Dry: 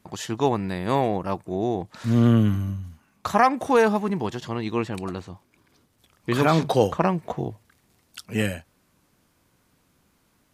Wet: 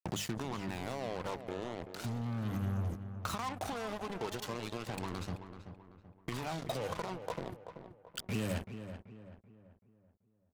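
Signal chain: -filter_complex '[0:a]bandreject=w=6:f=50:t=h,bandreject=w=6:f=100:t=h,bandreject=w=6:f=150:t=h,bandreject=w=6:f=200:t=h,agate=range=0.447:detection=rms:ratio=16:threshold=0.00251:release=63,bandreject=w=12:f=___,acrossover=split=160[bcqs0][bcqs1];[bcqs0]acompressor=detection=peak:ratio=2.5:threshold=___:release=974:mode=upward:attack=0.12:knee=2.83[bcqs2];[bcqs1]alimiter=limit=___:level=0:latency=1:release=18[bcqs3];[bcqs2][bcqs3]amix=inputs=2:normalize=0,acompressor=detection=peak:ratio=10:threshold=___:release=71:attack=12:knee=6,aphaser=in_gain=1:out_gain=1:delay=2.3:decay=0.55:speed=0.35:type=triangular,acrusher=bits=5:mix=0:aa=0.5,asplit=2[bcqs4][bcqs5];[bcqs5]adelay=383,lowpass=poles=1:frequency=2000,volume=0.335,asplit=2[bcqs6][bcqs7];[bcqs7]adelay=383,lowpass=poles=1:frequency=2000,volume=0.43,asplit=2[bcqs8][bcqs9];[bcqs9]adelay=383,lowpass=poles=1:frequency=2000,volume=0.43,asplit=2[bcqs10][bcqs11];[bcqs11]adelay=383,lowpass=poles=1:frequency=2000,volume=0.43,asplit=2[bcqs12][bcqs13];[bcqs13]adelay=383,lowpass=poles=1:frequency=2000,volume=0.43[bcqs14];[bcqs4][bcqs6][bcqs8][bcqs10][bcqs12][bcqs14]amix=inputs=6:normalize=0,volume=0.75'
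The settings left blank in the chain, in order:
1700, 0.0178, 0.178, 0.0158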